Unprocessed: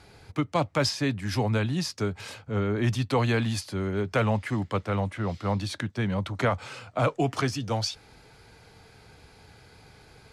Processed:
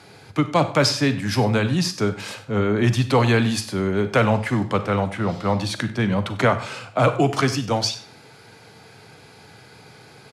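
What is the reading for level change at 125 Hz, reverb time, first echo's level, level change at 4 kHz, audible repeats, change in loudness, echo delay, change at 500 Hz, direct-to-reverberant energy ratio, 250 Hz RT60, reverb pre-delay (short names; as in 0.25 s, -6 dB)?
+5.5 dB, 0.50 s, -18.0 dB, +7.5 dB, 1, +7.0 dB, 96 ms, +7.5 dB, 10.5 dB, 0.60 s, 34 ms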